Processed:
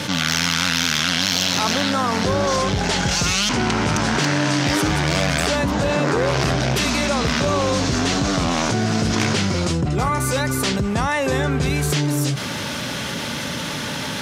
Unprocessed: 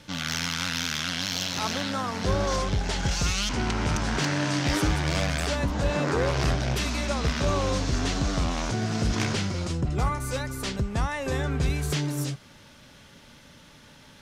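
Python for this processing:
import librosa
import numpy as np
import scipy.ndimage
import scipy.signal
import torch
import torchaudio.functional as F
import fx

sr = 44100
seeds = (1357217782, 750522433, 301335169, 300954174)

y = scipy.signal.sosfilt(scipy.signal.butter(2, 110.0, 'highpass', fs=sr, output='sos'), x)
y = fx.env_flatten(y, sr, amount_pct=70)
y = y * 10.0 ** (4.5 / 20.0)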